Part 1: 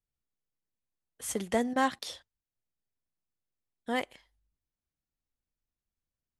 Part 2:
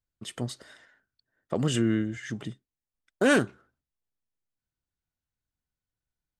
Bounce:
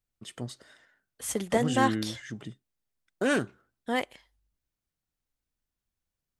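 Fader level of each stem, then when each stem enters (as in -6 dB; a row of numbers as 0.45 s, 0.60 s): +2.5 dB, -4.5 dB; 0.00 s, 0.00 s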